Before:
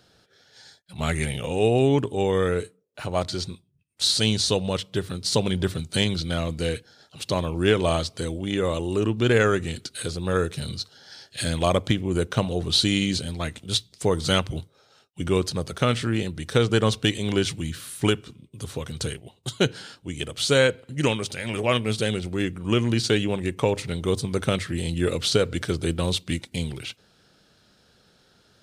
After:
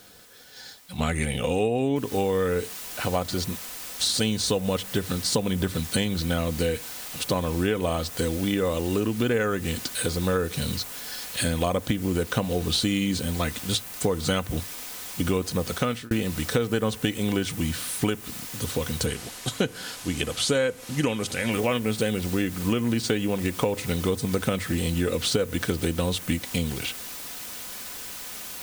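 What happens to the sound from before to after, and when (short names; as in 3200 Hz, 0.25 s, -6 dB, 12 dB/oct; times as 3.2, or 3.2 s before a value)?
1.96 noise floor step -59 dB -43 dB
15.7–16.11 fade out
19.06–21.52 LPF 11000 Hz
whole clip: dynamic EQ 4300 Hz, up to -6 dB, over -38 dBFS, Q 0.99; comb 4 ms, depth 38%; compressor, threshold -26 dBFS; gain +5 dB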